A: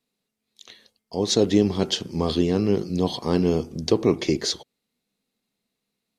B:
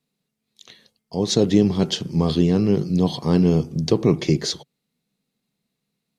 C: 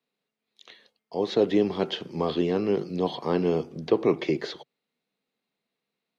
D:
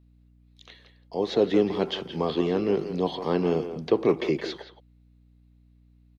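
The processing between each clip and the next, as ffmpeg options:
ffmpeg -i in.wav -af "equalizer=frequency=150:width_type=o:width=0.74:gain=11" out.wav
ffmpeg -i in.wav -filter_complex "[0:a]acrossover=split=3600[link_01][link_02];[link_02]acompressor=threshold=-41dB:ratio=4:attack=1:release=60[link_03];[link_01][link_03]amix=inputs=2:normalize=0,acrossover=split=310 3900:gain=0.126 1 0.2[link_04][link_05][link_06];[link_04][link_05][link_06]amix=inputs=3:normalize=0" out.wav
ffmpeg -i in.wav -filter_complex "[0:a]asplit=2[link_01][link_02];[link_02]adelay=170,highpass=300,lowpass=3400,asoftclip=type=hard:threshold=-18dB,volume=-9dB[link_03];[link_01][link_03]amix=inputs=2:normalize=0,aeval=exprs='val(0)+0.00158*(sin(2*PI*60*n/s)+sin(2*PI*2*60*n/s)/2+sin(2*PI*3*60*n/s)/3+sin(2*PI*4*60*n/s)/4+sin(2*PI*5*60*n/s)/5)':channel_layout=same" out.wav

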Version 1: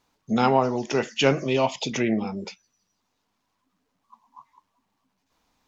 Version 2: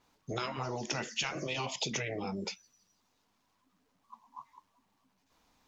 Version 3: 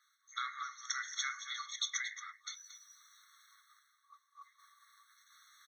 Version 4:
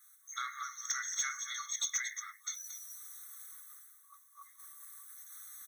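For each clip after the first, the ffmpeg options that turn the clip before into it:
ffmpeg -i in.wav -af "afftfilt=real='re*lt(hypot(re,im),0.316)':imag='im*lt(hypot(re,im),0.316)':win_size=1024:overlap=0.75,acompressor=threshold=-34dB:ratio=4,adynamicequalizer=threshold=0.00251:dfrequency=3800:dqfactor=0.7:tfrequency=3800:tqfactor=0.7:attack=5:release=100:ratio=0.375:range=2.5:mode=boostabove:tftype=highshelf" out.wav
ffmpeg -i in.wav -af "areverse,acompressor=mode=upward:threshold=-47dB:ratio=2.5,areverse,aecho=1:1:227:0.251,afftfilt=real='re*eq(mod(floor(b*sr/1024/1100),2),1)':imag='im*eq(mod(floor(b*sr/1024/1100),2),1)':win_size=1024:overlap=0.75,volume=1.5dB" out.wav
ffmpeg -i in.wav -filter_complex "[0:a]aexciter=amount=13.9:drive=9.3:freq=7400,asplit=2[link_01][link_02];[link_02]highpass=frequency=720:poles=1,volume=14dB,asoftclip=type=tanh:threshold=-12.5dB[link_03];[link_01][link_03]amix=inputs=2:normalize=0,lowpass=frequency=4700:poles=1,volume=-6dB,volume=-7.5dB" out.wav

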